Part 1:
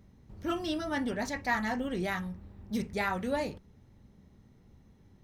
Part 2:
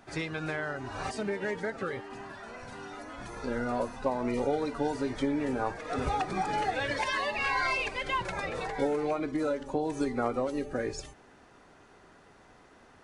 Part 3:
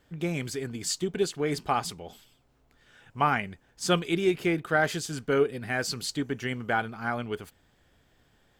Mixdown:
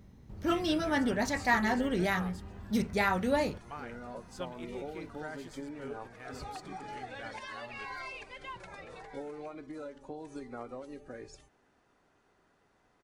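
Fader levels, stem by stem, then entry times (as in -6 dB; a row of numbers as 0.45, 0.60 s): +3.0, -13.0, -20.0 dB; 0.00, 0.35, 0.50 s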